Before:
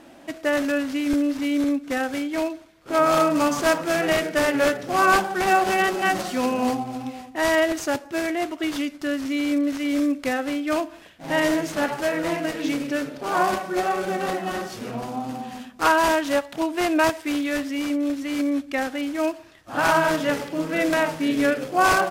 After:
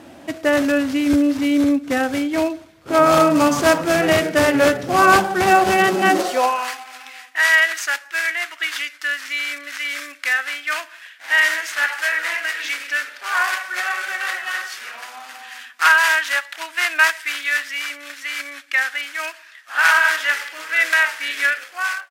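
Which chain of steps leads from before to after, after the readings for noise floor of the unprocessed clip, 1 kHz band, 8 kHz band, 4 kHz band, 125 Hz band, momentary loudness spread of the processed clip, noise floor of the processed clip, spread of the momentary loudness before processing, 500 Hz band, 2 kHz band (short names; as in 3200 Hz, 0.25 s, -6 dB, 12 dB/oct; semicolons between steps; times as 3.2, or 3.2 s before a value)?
-46 dBFS, +3.0 dB, +5.0 dB, +6.5 dB, +3.0 dB, 14 LU, -44 dBFS, 9 LU, +1.5 dB, +9.0 dB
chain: ending faded out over 0.72 s; high-pass sweep 83 Hz -> 1700 Hz, 5.75–6.71; gain +5 dB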